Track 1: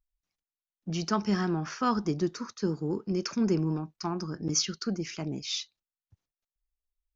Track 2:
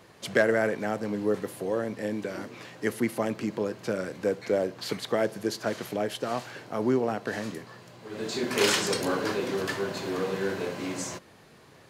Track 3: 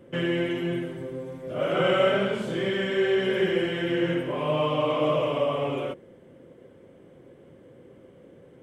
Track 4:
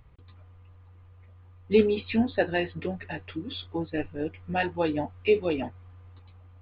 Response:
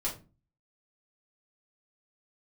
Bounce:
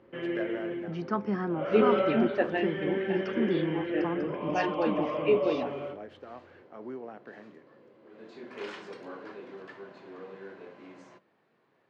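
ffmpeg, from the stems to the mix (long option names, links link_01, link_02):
-filter_complex "[0:a]aemphasis=mode=reproduction:type=75kf,volume=-0.5dB,asplit=2[link_01][link_02];[1:a]volume=-15dB,asplit=2[link_03][link_04];[link_04]volume=-20dB[link_05];[2:a]volume=-10.5dB,asplit=2[link_06][link_07];[link_07]volume=-6.5dB[link_08];[3:a]volume=-4dB,asplit=2[link_09][link_10];[link_10]volume=-11.5dB[link_11];[link_02]apad=whole_len=524677[link_12];[link_03][link_12]sidechaincompress=threshold=-41dB:ratio=8:attack=16:release=216[link_13];[4:a]atrim=start_sample=2205[link_14];[link_05][link_08][link_11]amix=inputs=3:normalize=0[link_15];[link_15][link_14]afir=irnorm=-1:irlink=0[link_16];[link_01][link_13][link_06][link_09][link_16]amix=inputs=5:normalize=0,highpass=200,lowpass=2400"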